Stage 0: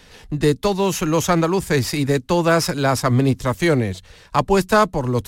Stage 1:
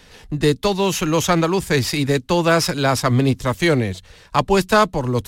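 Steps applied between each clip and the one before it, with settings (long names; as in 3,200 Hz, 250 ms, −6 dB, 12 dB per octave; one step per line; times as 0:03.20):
dynamic equaliser 3,300 Hz, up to +5 dB, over −37 dBFS, Q 1.1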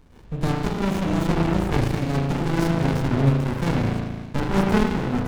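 spring reverb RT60 1.5 s, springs 36 ms, chirp 60 ms, DRR −2 dB
windowed peak hold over 65 samples
level −4.5 dB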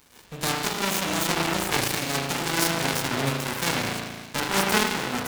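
spectral tilt +4.5 dB per octave
level +1.5 dB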